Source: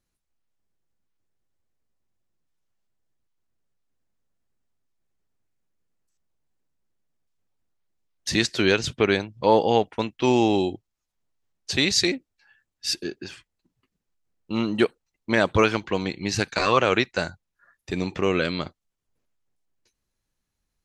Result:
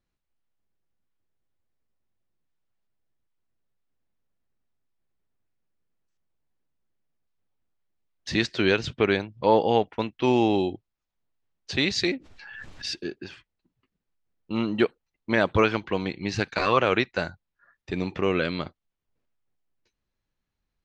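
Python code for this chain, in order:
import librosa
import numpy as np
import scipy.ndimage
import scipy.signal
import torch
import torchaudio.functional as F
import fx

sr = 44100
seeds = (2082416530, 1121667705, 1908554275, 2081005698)

y = scipy.signal.sosfilt(scipy.signal.butter(2, 4000.0, 'lowpass', fs=sr, output='sos'), x)
y = fx.pre_swell(y, sr, db_per_s=31.0, at=(12.07, 12.89), fade=0.02)
y = y * 10.0 ** (-1.5 / 20.0)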